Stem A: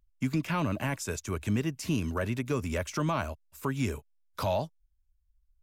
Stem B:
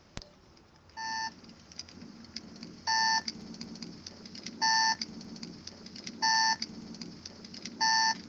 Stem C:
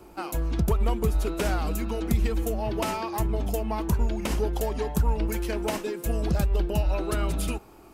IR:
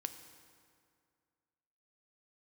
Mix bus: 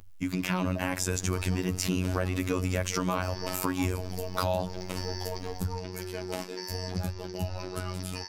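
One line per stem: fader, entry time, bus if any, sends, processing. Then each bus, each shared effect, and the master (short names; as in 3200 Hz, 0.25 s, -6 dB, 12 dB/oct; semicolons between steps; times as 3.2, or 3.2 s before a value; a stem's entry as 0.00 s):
-2.0 dB, 0.00 s, send -6 dB, fast leveller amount 50%
-17.0 dB, 0.35 s, no send, per-bin compression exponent 0.4; HPF 1100 Hz
-6.0 dB, 0.65 s, no send, flange 0.76 Hz, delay 9.8 ms, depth 7.6 ms, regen -48%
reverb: on, RT60 2.2 s, pre-delay 3 ms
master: AGC gain up to 6 dB; robotiser 91.7 Hz; compressor 3:1, threshold -25 dBFS, peak gain reduction 7.5 dB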